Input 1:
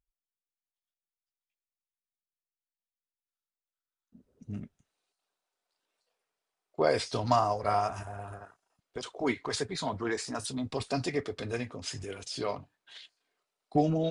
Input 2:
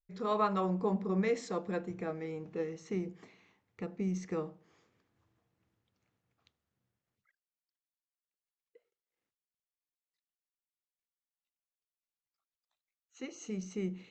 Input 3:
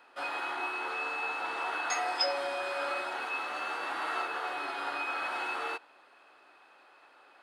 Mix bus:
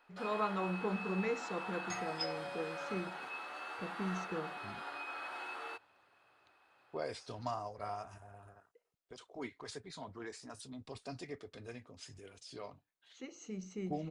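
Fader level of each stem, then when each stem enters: −14.0, −5.0, −9.5 decibels; 0.15, 0.00, 0.00 seconds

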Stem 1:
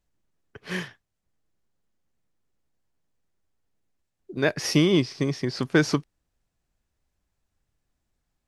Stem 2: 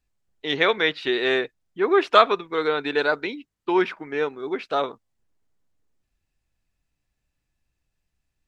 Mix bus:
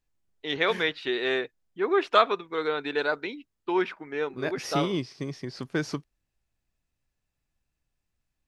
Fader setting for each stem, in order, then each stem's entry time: −8.5, −5.0 decibels; 0.00, 0.00 seconds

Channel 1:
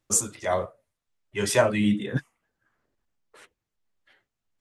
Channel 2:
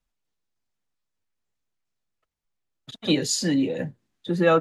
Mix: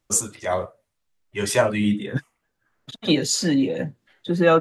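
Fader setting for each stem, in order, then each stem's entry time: +1.5, +2.5 decibels; 0.00, 0.00 seconds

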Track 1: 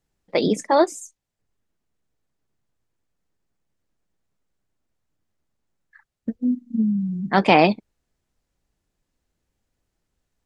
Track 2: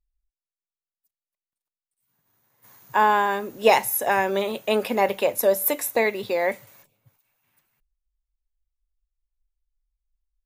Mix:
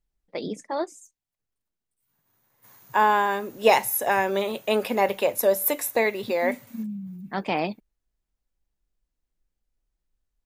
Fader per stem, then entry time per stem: −11.5, −1.0 decibels; 0.00, 0.00 seconds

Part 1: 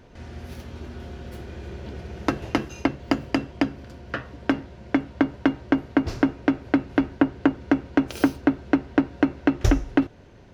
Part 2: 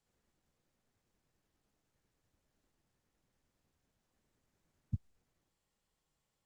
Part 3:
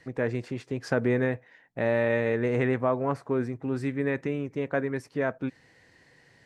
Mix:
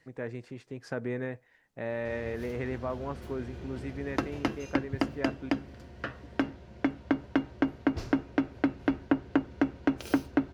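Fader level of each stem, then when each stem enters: −6.5, 0.0, −9.0 decibels; 1.90, 0.00, 0.00 seconds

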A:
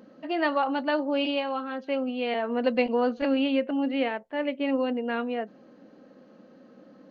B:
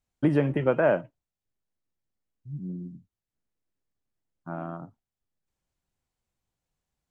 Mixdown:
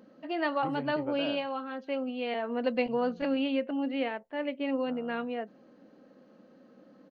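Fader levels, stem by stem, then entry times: −4.5, −16.0 decibels; 0.00, 0.40 seconds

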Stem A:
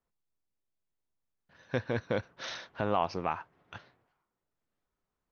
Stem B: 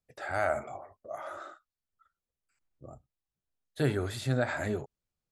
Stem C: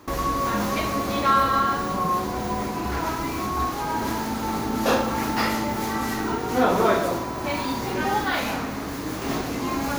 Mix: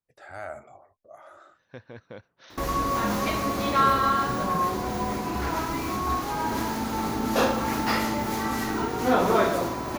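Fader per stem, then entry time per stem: −11.5, −8.0, −1.5 decibels; 0.00, 0.00, 2.50 seconds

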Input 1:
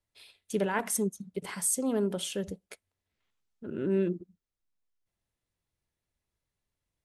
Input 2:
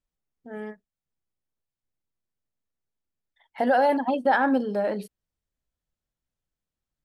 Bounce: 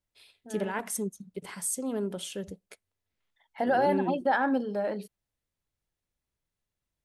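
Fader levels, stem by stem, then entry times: −3.0, −4.5 decibels; 0.00, 0.00 seconds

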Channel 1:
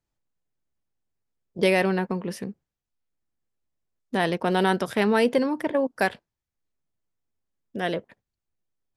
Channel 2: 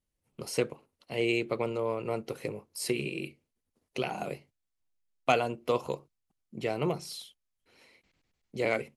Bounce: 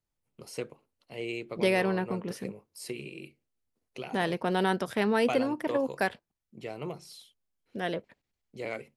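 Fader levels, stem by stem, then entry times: −5.0, −7.5 decibels; 0.00, 0.00 seconds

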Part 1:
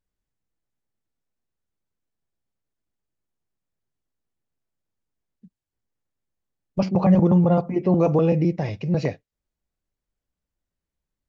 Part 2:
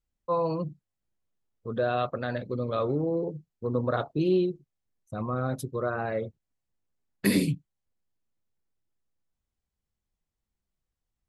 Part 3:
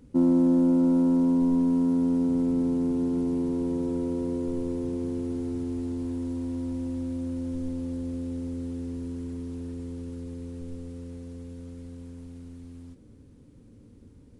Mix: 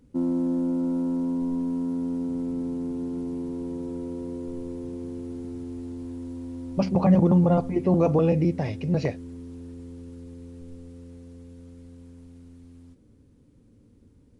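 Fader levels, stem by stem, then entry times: −2.0 dB, muted, −4.5 dB; 0.00 s, muted, 0.00 s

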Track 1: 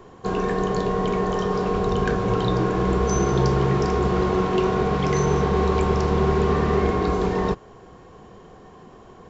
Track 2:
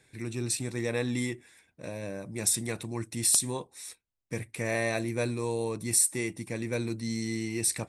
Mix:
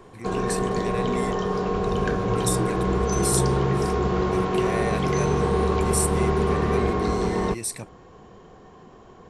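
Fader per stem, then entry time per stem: −2.0, −2.0 decibels; 0.00, 0.00 seconds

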